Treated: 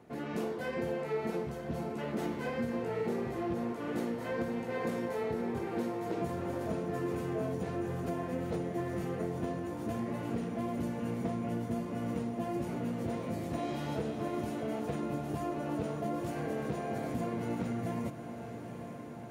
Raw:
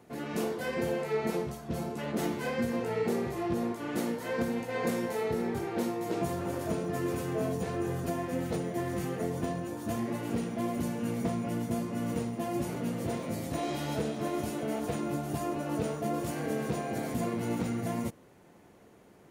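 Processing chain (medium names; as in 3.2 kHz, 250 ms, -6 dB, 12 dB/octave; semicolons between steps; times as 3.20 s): on a send: echo that smears into a reverb 872 ms, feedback 69%, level -12.5 dB; on the sum: compression 1.5:1, threshold -36 dBFS, peak gain reduction 4 dB; treble shelf 4.2 kHz -9.5 dB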